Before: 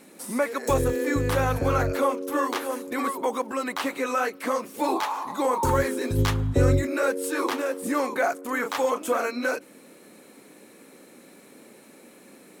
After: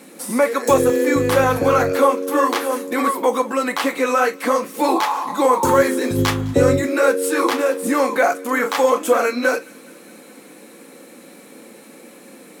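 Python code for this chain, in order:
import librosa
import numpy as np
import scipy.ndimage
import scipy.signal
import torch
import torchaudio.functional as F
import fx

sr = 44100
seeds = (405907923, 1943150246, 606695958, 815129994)

y = scipy.signal.sosfilt(scipy.signal.butter(2, 130.0, 'highpass', fs=sr, output='sos'), x)
y = fx.echo_wet_highpass(y, sr, ms=209, feedback_pct=69, hz=2000.0, wet_db=-22.5)
y = fx.rev_gated(y, sr, seeds[0], gate_ms=80, shape='falling', drr_db=8.0)
y = F.gain(torch.from_numpy(y), 7.0).numpy()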